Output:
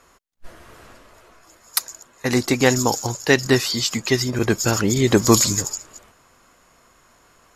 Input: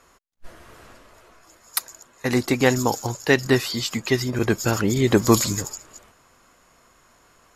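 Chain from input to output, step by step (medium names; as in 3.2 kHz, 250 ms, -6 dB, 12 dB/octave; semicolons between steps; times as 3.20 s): dynamic bell 6 kHz, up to +6 dB, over -41 dBFS, Q 1.2; trim +1.5 dB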